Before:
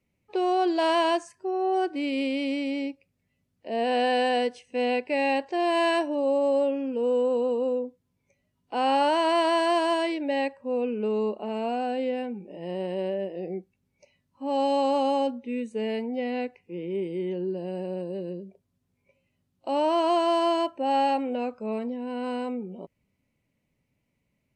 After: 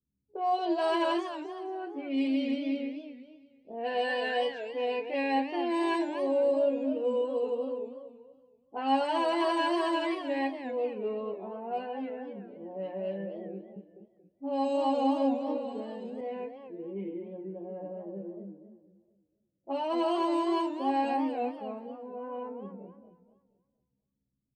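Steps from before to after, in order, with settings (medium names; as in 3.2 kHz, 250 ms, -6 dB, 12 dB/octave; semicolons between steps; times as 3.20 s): treble shelf 7.4 kHz -7 dB; hum notches 60/120/180/240/300/360 Hz; inharmonic resonator 66 Hz, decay 0.28 s, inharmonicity 0.002; level-controlled noise filter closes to 370 Hz, open at -27 dBFS; doubling 26 ms -12 dB; level-controlled noise filter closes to 350 Hz, open at -31.5 dBFS; 13.55–16.21 s: repeats whose band climbs or falls 206 ms, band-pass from 190 Hz, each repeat 1.4 oct, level -2.5 dB; modulated delay 236 ms, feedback 37%, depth 199 cents, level -10 dB; trim +1.5 dB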